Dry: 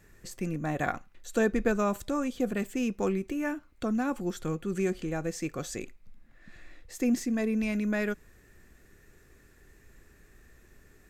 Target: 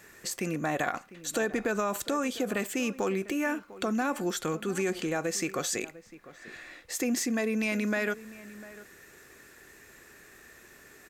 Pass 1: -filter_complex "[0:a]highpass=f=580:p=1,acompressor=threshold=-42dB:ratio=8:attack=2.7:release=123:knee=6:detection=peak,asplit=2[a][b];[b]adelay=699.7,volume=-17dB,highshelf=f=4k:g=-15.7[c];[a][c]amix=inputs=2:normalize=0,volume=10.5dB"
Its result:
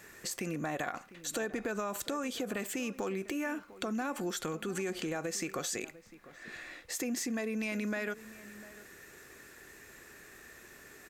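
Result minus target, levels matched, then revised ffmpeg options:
compressor: peak gain reduction +6.5 dB
-filter_complex "[0:a]highpass=f=580:p=1,acompressor=threshold=-34.5dB:ratio=8:attack=2.7:release=123:knee=6:detection=peak,asplit=2[a][b];[b]adelay=699.7,volume=-17dB,highshelf=f=4k:g=-15.7[c];[a][c]amix=inputs=2:normalize=0,volume=10.5dB"

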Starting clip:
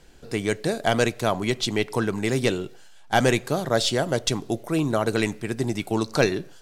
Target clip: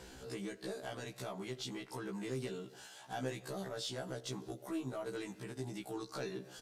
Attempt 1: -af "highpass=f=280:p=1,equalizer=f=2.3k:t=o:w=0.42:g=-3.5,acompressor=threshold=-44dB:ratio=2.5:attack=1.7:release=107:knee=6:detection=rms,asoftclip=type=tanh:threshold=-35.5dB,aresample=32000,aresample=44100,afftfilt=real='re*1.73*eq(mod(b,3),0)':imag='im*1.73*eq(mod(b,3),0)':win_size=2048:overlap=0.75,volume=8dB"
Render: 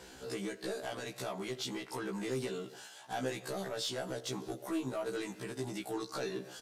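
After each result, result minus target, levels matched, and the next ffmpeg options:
compressor: peak gain reduction -6.5 dB; 125 Hz band -4.0 dB
-af "highpass=f=280:p=1,equalizer=f=2.3k:t=o:w=0.42:g=-3.5,acompressor=threshold=-53.5dB:ratio=2.5:attack=1.7:release=107:knee=6:detection=rms,asoftclip=type=tanh:threshold=-35.5dB,aresample=32000,aresample=44100,afftfilt=real='re*1.73*eq(mod(b,3),0)':imag='im*1.73*eq(mod(b,3),0)':win_size=2048:overlap=0.75,volume=8dB"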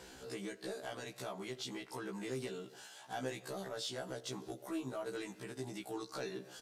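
125 Hz band -3.5 dB
-af "highpass=f=94:p=1,equalizer=f=2.3k:t=o:w=0.42:g=-3.5,acompressor=threshold=-53.5dB:ratio=2.5:attack=1.7:release=107:knee=6:detection=rms,asoftclip=type=tanh:threshold=-35.5dB,aresample=32000,aresample=44100,afftfilt=real='re*1.73*eq(mod(b,3),0)':imag='im*1.73*eq(mod(b,3),0)':win_size=2048:overlap=0.75,volume=8dB"

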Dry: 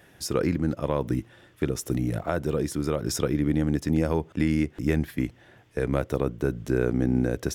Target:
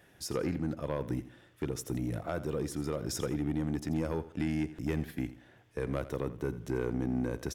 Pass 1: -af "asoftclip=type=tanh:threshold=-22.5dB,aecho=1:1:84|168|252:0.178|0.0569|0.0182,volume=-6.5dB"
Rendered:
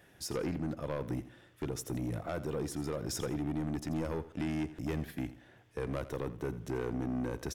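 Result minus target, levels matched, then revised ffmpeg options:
soft clip: distortion +7 dB
-af "asoftclip=type=tanh:threshold=-16.5dB,aecho=1:1:84|168|252:0.178|0.0569|0.0182,volume=-6.5dB"

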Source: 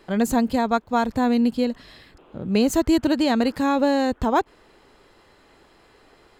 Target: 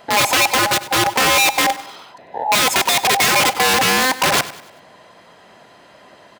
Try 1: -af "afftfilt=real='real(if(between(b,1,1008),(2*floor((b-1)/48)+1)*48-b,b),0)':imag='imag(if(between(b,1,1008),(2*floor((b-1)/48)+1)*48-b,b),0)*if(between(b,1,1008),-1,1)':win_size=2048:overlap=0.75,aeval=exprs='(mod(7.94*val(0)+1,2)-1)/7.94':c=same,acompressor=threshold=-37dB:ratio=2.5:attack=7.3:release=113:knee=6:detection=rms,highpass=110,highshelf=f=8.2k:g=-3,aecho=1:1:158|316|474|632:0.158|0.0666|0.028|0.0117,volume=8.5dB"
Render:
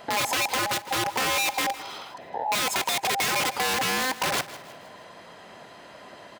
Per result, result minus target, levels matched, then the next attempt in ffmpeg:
echo 61 ms late; compressor: peak gain reduction +11 dB
-af "afftfilt=real='real(if(between(b,1,1008),(2*floor((b-1)/48)+1)*48-b,b),0)':imag='imag(if(between(b,1,1008),(2*floor((b-1)/48)+1)*48-b,b),0)*if(between(b,1,1008),-1,1)':win_size=2048:overlap=0.75,aeval=exprs='(mod(7.94*val(0)+1,2)-1)/7.94':c=same,acompressor=threshold=-37dB:ratio=2.5:attack=7.3:release=113:knee=6:detection=rms,highpass=110,highshelf=f=8.2k:g=-3,aecho=1:1:97|194|291|388:0.158|0.0666|0.028|0.0117,volume=8.5dB"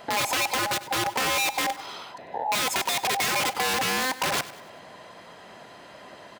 compressor: peak gain reduction +11 dB
-af "afftfilt=real='real(if(between(b,1,1008),(2*floor((b-1)/48)+1)*48-b,b),0)':imag='imag(if(between(b,1,1008),(2*floor((b-1)/48)+1)*48-b,b),0)*if(between(b,1,1008),-1,1)':win_size=2048:overlap=0.75,aeval=exprs='(mod(7.94*val(0)+1,2)-1)/7.94':c=same,highpass=110,highshelf=f=8.2k:g=-3,aecho=1:1:97|194|291|388:0.158|0.0666|0.028|0.0117,volume=8.5dB"

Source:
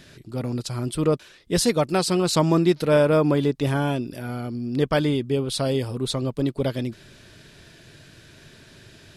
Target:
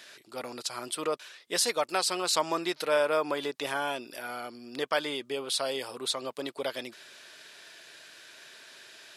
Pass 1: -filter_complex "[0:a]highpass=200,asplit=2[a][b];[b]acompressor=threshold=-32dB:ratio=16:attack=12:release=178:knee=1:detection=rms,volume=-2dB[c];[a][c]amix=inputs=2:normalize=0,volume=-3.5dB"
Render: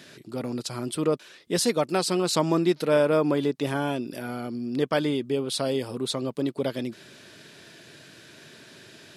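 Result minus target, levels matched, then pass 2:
250 Hz band +8.5 dB
-filter_complex "[0:a]highpass=720,asplit=2[a][b];[b]acompressor=threshold=-32dB:ratio=16:attack=12:release=178:knee=1:detection=rms,volume=-2dB[c];[a][c]amix=inputs=2:normalize=0,volume=-3.5dB"

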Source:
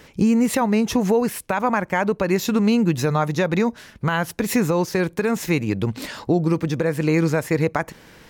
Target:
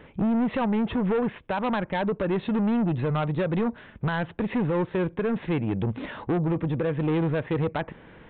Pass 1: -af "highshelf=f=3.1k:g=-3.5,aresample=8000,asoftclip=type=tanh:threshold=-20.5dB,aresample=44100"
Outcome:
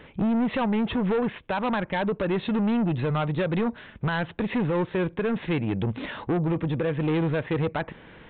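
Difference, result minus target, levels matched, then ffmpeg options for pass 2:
4000 Hz band +3.5 dB
-af "highshelf=f=3.1k:g=-14,aresample=8000,asoftclip=type=tanh:threshold=-20.5dB,aresample=44100"

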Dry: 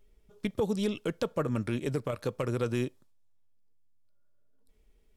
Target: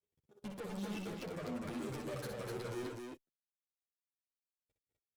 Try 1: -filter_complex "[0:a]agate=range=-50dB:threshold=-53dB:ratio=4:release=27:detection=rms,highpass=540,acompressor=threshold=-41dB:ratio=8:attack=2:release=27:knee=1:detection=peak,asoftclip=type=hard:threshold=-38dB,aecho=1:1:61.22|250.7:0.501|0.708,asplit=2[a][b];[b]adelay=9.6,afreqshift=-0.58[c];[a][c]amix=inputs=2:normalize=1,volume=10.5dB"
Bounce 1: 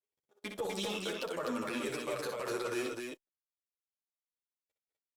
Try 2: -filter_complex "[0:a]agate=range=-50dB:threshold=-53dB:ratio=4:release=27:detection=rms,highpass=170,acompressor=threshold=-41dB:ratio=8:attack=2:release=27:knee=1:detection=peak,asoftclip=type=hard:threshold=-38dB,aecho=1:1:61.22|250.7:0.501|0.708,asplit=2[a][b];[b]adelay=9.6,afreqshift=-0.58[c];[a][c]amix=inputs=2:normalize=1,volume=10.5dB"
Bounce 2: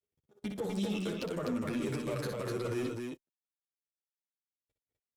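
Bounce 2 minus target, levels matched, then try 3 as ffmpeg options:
hard clip: distortion -11 dB
-filter_complex "[0:a]agate=range=-50dB:threshold=-53dB:ratio=4:release=27:detection=rms,highpass=170,acompressor=threshold=-41dB:ratio=8:attack=2:release=27:knee=1:detection=peak,asoftclip=type=hard:threshold=-50dB,aecho=1:1:61.22|250.7:0.501|0.708,asplit=2[a][b];[b]adelay=9.6,afreqshift=-0.58[c];[a][c]amix=inputs=2:normalize=1,volume=10.5dB"

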